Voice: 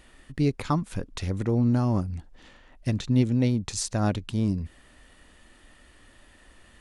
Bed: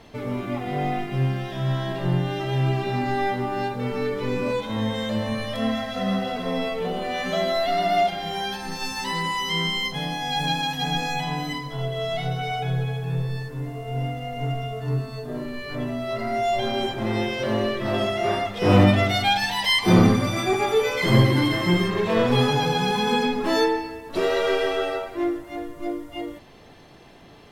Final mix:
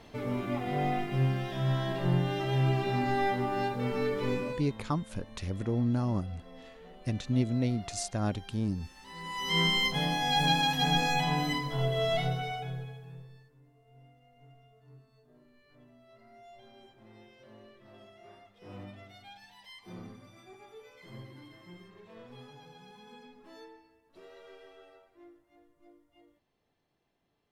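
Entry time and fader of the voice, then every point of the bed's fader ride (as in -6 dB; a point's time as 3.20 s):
4.20 s, -6.0 dB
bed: 4.32 s -4.5 dB
4.87 s -25 dB
9.00 s -25 dB
9.59 s -1.5 dB
12.16 s -1.5 dB
13.61 s -30.5 dB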